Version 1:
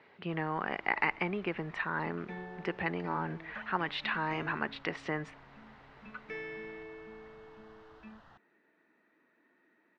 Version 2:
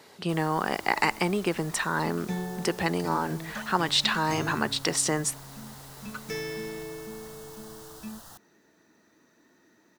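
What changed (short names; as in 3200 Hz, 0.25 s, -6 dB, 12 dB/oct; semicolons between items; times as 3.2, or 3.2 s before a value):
second sound: remove HPF 220 Hz 12 dB/oct; master: remove ladder low-pass 2800 Hz, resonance 40%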